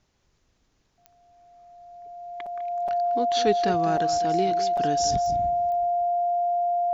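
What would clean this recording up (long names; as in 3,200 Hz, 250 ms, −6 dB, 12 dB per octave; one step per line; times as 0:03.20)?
click removal
notch filter 700 Hz, Q 30
repair the gap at 0:02.46/0:02.88/0:03.97/0:04.77, 5.1 ms
echo removal 202 ms −13.5 dB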